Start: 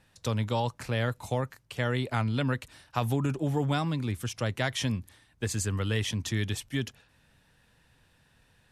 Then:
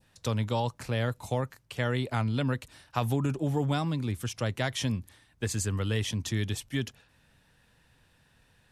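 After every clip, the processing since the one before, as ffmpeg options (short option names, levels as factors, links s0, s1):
-af "adynamicequalizer=threshold=0.00562:dfrequency=1800:dqfactor=0.85:tfrequency=1800:tqfactor=0.85:attack=5:release=100:ratio=0.375:range=2:mode=cutabove:tftype=bell"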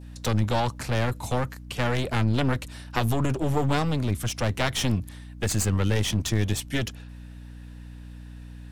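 -af "aeval=exprs='clip(val(0),-1,0.015)':c=same,aeval=exprs='val(0)+0.00398*(sin(2*PI*60*n/s)+sin(2*PI*2*60*n/s)/2+sin(2*PI*3*60*n/s)/3+sin(2*PI*4*60*n/s)/4+sin(2*PI*5*60*n/s)/5)':c=same,volume=2.51"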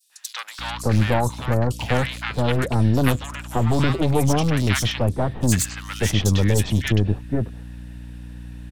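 -filter_complex "[0:a]acrossover=split=1100|4500[s0][s1][s2];[s1]adelay=100[s3];[s0]adelay=590[s4];[s4][s3][s2]amix=inputs=3:normalize=0,volume=1.88"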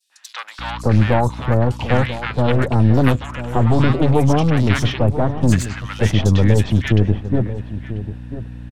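-filter_complex "[0:a]aemphasis=mode=reproduction:type=75kf,asplit=2[s0][s1];[s1]adelay=991.3,volume=0.251,highshelf=f=4000:g=-22.3[s2];[s0][s2]amix=inputs=2:normalize=0,volume=1.68"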